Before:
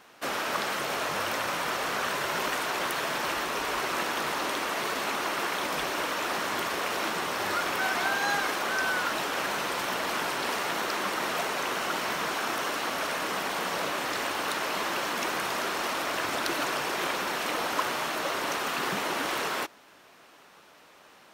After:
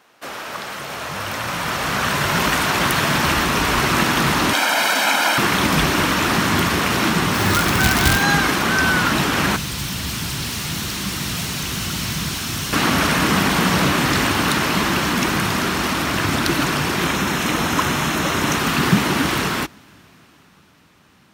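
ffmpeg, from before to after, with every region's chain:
-filter_complex "[0:a]asettb=1/sr,asplit=3[a][b][c];[a]atrim=end=4.534[d];[b]atrim=start=4.53:end=5.38,asetpts=PTS-STARTPTS,afade=t=in:d=0.004:c=qsin,afade=t=out:st=0.846:d=0.004:c=qsin,highpass=f=310:w=0.5412,highpass=f=310:w=1.3066,aecho=1:1:1.3:0.8,atrim=end_sample=37485[e];[c]atrim=start=5.376[f];[d][e]acrossfade=d=0.004:c1=hsin:c2=qsin[g];[g][f]acrossfade=d=0.004:c1=qsin:c2=hsin,asettb=1/sr,asplit=3[h][i][j];[h]atrim=end=7.344[k];[i]atrim=start=7.34:end=8.23,asetpts=PTS-STARTPTS,afade=t=in:d=0.004:c=qsin,afade=t=out:st=0.886:d=0.004:c=qsin,aeval=exprs='(mod(9.44*val(0)+1,2)-1)/9.44':c=same,acrusher=bits=5:mix=0:aa=0.5[l];[j]atrim=start=8.226[m];[k][l]acrossfade=d=0.004:c1=hsin:c2=qsin[n];[n][m]acrossfade=d=0.004:c1=qsin:c2=hsin,asettb=1/sr,asplit=3[o][p][q];[o]atrim=end=9.564[r];[p]atrim=start=9.56:end=12.73,asetpts=PTS-STARTPTS,afade=t=in:d=0.004:c=qsin,afade=t=out:st=3.166:d=0.004:c=qsin,acrossover=split=150|3000[s][t][u];[t]acompressor=threshold=-43dB:ratio=5:attack=3.2:release=140:knee=2.83:detection=peak[v];[s][v][u]amix=inputs=3:normalize=0,volume=35.5dB,asoftclip=hard,volume=-35.5dB[w];[q]atrim=start=12.726[x];[r][w]acrossfade=d=0.004:c1=hsin:c2=qsin[y];[y][x]acrossfade=d=0.004:c1=qsin:c2=hsin,asettb=1/sr,asplit=3[z][aa][ab];[z]atrim=end=17.074[ac];[aa]atrim=start=17.07:end=18.58,asetpts=PTS-STARTPTS,afade=t=in:d=0.004:c=qsin,afade=t=out:st=1.506:d=0.004:c=qsin,equalizer=f=6.6k:w=4.5:g=3.5,bandreject=f=4.6k:w=9.9[ad];[ab]atrim=start=18.576[ae];[ac][ad]acrossfade=d=0.004:c1=hsin:c2=qsin[af];[af][ae]acrossfade=d=0.004:c1=qsin:c2=hsin,highpass=58,asubboost=boost=11.5:cutoff=160,dynaudnorm=f=170:g=21:m=14dB"

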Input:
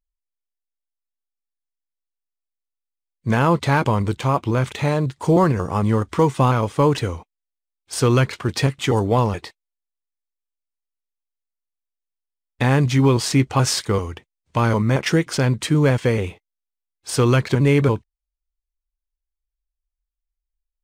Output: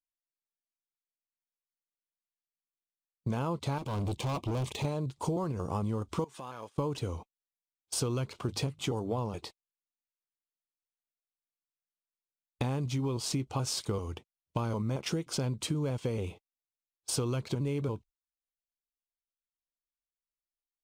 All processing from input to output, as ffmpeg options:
-filter_complex "[0:a]asettb=1/sr,asplit=3[a][b][c];[a]atrim=end=3.784[d];[b]atrim=start=3.78:end=4.85,asetpts=PTS-STARTPTS,afade=t=in:d=0.004:c=qsin,afade=t=out:st=1.066:d=0.004:c=qsin,asuperstop=centerf=1400:order=4:qfactor=3.2,volume=24dB,asoftclip=hard,volume=-24dB[e];[c]atrim=start=4.846[f];[d][e]acrossfade=d=0.004:c1=hsin:c2=qsin[g];[g][f]acrossfade=d=0.004:c1=qsin:c2=hsin,asettb=1/sr,asplit=3[h][i][j];[h]atrim=end=6.244[k];[i]atrim=start=6.24:end=6.76,asetpts=PTS-STARTPTS,afade=t=in:d=0.004:c=qsin,afade=t=out:st=0.516:d=0.004:c=qsin,highpass=f=710:p=1,equalizer=f=1.7k:w=7.8:g=14.5,acompressor=threshold=-34dB:ratio=4:attack=3.2:release=140:knee=1:detection=peak[l];[j]atrim=start=6.756[m];[k][l]acrossfade=d=0.004:c1=hsin:c2=qsin[n];[n][m]acrossfade=d=0.004:c1=qsin:c2=hsin,asettb=1/sr,asplit=3[o][p][q];[o]atrim=end=8.334[r];[p]atrim=start=8.33:end=9.34,asetpts=PTS-STARTPTS,afade=t=in:d=0.004:c=qsin,afade=t=out:st=1.006:d=0.004:c=qsin,bandreject=f=50:t=h:w=6,bandreject=f=100:t=h:w=6,bandreject=f=150:t=h:w=6,adynamicequalizer=threshold=0.0158:dfrequency=1700:dqfactor=0.7:tfrequency=1700:tqfactor=0.7:attack=5:release=100:ratio=0.375:range=1.5:mode=cutabove:tftype=highshelf[s];[q]atrim=start=9.336[t];[r][s]acrossfade=d=0.004:c1=hsin:c2=qsin[u];[u][t]acrossfade=d=0.004:c1=qsin:c2=hsin,agate=range=-23dB:threshold=-38dB:ratio=16:detection=peak,equalizer=f=1.8k:w=2.4:g=-13.5,acompressor=threshold=-25dB:ratio=10,volume=-4dB"

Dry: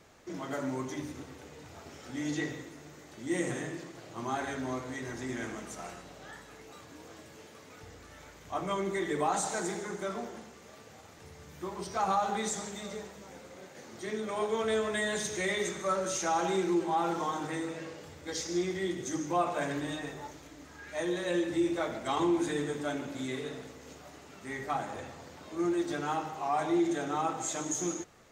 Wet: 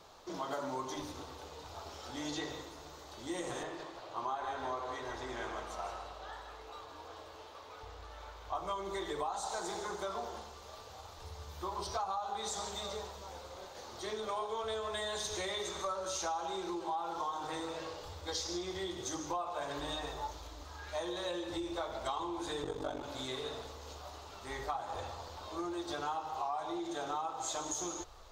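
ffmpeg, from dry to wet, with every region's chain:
-filter_complex "[0:a]asettb=1/sr,asplit=3[a][b][c];[a]atrim=end=3.634[d];[b]atrim=start=3.63:end=8.55,asetpts=PTS-STARTPTS,afade=t=in:d=0.004:c=qsin,afade=t=out:st=4.916:d=0.004:c=qsin,bass=f=250:g=-7,treble=f=4k:g=-9,aecho=1:1:161:0.398,atrim=end_sample=216972[e];[c]atrim=start=8.546[f];[d][e]acrossfade=d=0.004:c1=hsin:c2=qsin[g];[g][f]acrossfade=d=0.004:c1=qsin:c2=hsin,asettb=1/sr,asplit=3[h][i][j];[h]atrim=end=22.634[k];[i]atrim=start=22.63:end=23.03,asetpts=PTS-STARTPTS,afade=t=in:d=0.004:c=qsin,afade=t=out:st=0.396:d=0.004:c=qsin,equalizer=f=230:w=0.31:g=8.5,aeval=exprs='val(0)*sin(2*PI*24*n/s)':c=same[l];[j]atrim=start=23.026[m];[k][l]acrossfade=d=0.004:c1=hsin:c2=qsin[n];[n][m]acrossfade=d=0.004:c1=qsin:c2=hsin,equalizer=f=125:t=o:w=1:g=-6,equalizer=f=250:t=o:w=1:g=-7,equalizer=f=1k:t=o:w=1:g=8,equalizer=f=2k:t=o:w=1:g=-10,equalizer=f=4k:t=o:w=1:g=8,equalizer=f=8k:t=o:w=1:g=-5,acompressor=threshold=-35dB:ratio=10,asubboost=boost=9:cutoff=58,volume=1.5dB"

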